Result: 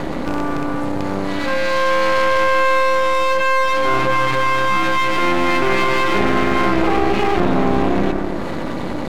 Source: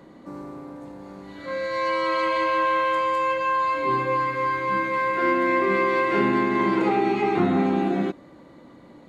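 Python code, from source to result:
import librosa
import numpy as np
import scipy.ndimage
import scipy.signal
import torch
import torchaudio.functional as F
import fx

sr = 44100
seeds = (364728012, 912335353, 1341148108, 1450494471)

p1 = fx.rattle_buzz(x, sr, strikes_db=-38.0, level_db=-32.0)
p2 = p1 + fx.echo_bbd(p1, sr, ms=85, stages=1024, feedback_pct=53, wet_db=-11.5, dry=0)
p3 = np.maximum(p2, 0.0)
p4 = fx.env_flatten(p3, sr, amount_pct=70)
y = p4 * 10.0 ** (6.5 / 20.0)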